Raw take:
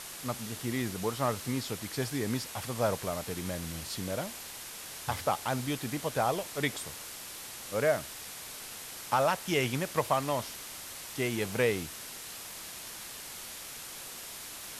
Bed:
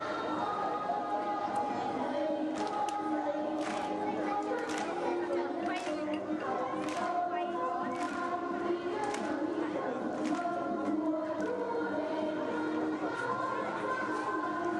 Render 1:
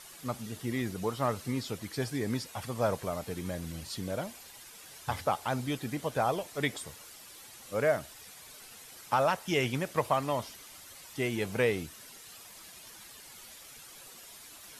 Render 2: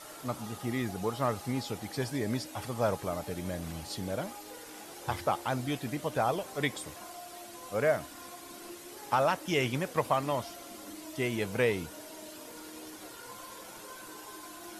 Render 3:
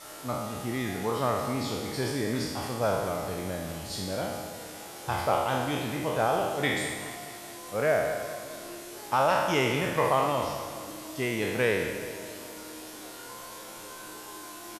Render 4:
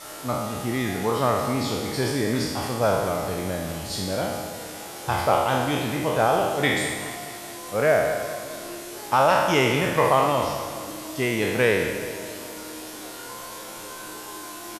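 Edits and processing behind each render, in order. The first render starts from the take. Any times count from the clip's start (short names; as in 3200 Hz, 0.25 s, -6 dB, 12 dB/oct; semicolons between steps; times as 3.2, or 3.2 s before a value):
denoiser 10 dB, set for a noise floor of -44 dBFS
add bed -14.5 dB
spectral trails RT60 1.26 s; feedback echo 0.21 s, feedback 58%, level -13 dB
gain +5.5 dB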